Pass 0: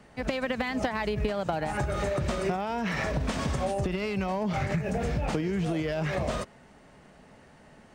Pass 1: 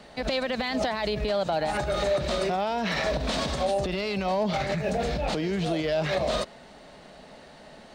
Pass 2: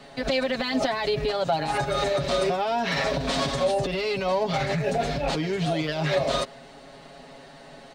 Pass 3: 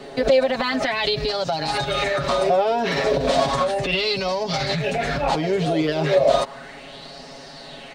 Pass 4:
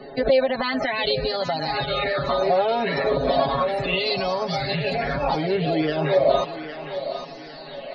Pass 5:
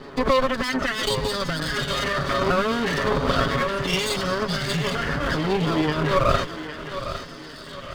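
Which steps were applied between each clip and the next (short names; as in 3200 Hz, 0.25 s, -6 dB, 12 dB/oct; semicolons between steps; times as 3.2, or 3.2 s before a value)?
limiter -24.5 dBFS, peak gain reduction 8 dB; fifteen-band EQ 100 Hz -11 dB, 630 Hz +6 dB, 4000 Hz +12 dB; gain +4 dB
comb 7.3 ms, depth 85%
compressor 3:1, threshold -27 dBFS, peak gain reduction 7 dB; LFO bell 0.34 Hz 380–5400 Hz +12 dB; gain +5 dB
loudest bins only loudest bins 64; thinning echo 0.807 s, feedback 50%, high-pass 310 Hz, level -10 dB; gain -1.5 dB
minimum comb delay 0.61 ms; gain +2 dB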